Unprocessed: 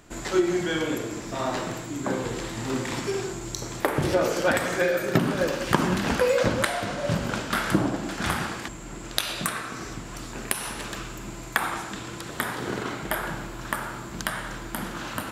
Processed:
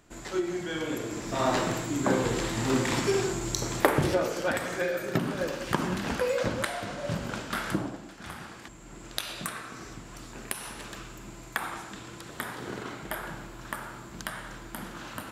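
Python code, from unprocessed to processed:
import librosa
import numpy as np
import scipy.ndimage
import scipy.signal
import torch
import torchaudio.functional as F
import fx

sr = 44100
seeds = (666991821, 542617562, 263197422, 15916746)

y = fx.gain(x, sr, db=fx.line((0.65, -7.5), (1.5, 2.5), (3.87, 2.5), (4.29, -6.0), (7.7, -6.0), (8.17, -16.0), (9.02, -7.0)))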